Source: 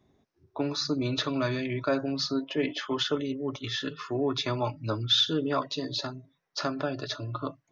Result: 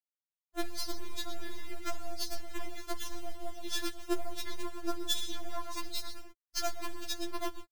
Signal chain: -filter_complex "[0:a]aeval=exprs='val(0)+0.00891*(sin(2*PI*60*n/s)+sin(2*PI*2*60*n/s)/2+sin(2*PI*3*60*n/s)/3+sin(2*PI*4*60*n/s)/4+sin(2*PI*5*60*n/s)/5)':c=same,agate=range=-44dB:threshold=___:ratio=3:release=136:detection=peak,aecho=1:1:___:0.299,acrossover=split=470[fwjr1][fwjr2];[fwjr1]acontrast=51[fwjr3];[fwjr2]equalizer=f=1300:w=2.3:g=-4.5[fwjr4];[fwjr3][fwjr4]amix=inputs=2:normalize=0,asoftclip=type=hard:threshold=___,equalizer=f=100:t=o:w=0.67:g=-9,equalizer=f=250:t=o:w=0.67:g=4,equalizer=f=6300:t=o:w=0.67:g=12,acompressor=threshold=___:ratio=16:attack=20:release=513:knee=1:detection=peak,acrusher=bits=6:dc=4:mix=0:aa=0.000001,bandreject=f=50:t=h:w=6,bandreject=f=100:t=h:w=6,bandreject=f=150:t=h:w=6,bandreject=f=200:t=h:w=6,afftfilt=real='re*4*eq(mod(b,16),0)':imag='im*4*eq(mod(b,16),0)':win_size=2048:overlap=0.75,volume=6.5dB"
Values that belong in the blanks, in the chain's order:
-28dB, 118, -19.5dB, -35dB